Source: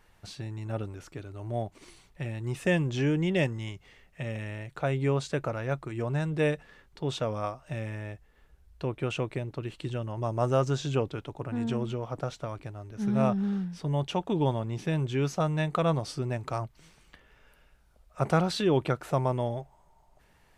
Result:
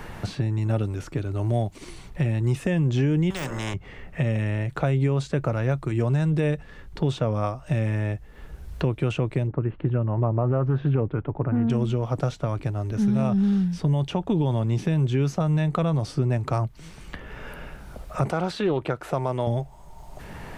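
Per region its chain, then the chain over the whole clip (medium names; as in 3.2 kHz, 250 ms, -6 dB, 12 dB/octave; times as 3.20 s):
3.30–3.74 s: de-esser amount 95% + hum notches 60/120/180/240/300/360/420/480/540/600 Hz + spectrum-flattening compressor 4:1
9.47–11.70 s: low-pass 1.7 kHz 24 dB/octave + loudspeaker Doppler distortion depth 0.16 ms
18.30–19.47 s: tone controls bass -13 dB, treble -3 dB + loudspeaker Doppler distortion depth 0.11 ms
whole clip: bass shelf 270 Hz +9 dB; peak limiter -17.5 dBFS; three bands compressed up and down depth 70%; trim +2.5 dB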